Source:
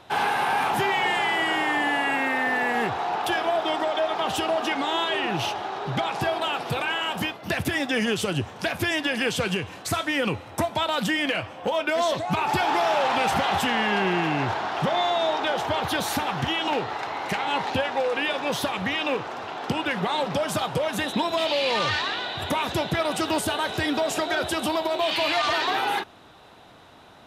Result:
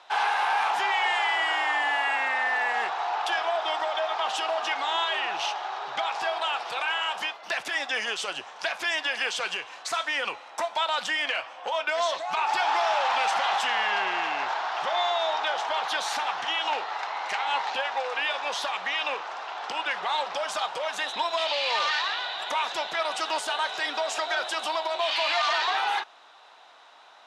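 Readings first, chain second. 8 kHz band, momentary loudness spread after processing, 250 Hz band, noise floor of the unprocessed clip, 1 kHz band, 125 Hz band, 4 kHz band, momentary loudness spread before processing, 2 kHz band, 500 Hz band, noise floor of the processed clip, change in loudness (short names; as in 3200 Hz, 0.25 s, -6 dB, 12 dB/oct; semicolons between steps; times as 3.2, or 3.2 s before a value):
-3.0 dB, 6 LU, -20.0 dB, -44 dBFS, -1.0 dB, under -30 dB, -0.5 dB, 5 LU, -1.0 dB, -6.0 dB, -47 dBFS, -2.0 dB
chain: Chebyshev band-pass 830–6400 Hz, order 2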